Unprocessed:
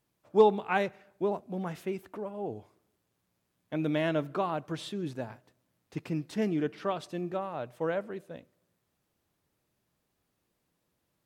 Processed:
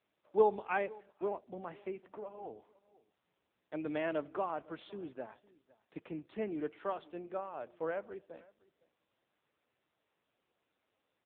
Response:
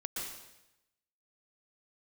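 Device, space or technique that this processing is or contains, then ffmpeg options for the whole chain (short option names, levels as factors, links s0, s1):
satellite phone: -filter_complex "[0:a]asettb=1/sr,asplit=3[s0][s1][s2];[s0]atrim=end=6.654[s3];[s1]atrim=start=6.65:end=7.53,asetpts=PTS-STARTPTS,afade=t=in:d=0.004:c=qsin,afade=t=out:st=0.876:d=0.004:c=qsin,highpass=f=88:p=1[s4];[s2]atrim=start=7.526[s5];[s3][s4]acrossfade=d=0.004:c1=hsin:c2=qsin[s6];[s6][s5]acrossfade=d=0.004:c1=qsin:c2=hsin,highpass=310,lowpass=3200,aecho=1:1:507:0.0668,volume=0.631" -ar 8000 -c:a libopencore_amrnb -b:a 6700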